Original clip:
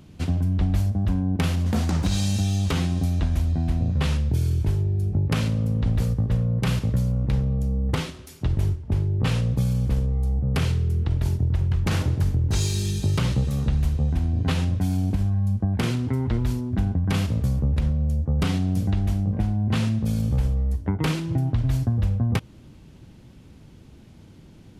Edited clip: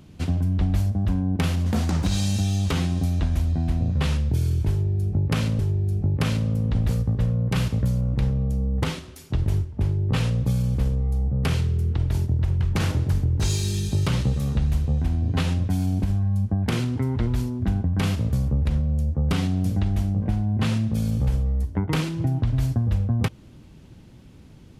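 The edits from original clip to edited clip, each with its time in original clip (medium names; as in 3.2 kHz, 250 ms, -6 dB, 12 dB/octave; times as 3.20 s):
4.70–5.59 s: loop, 2 plays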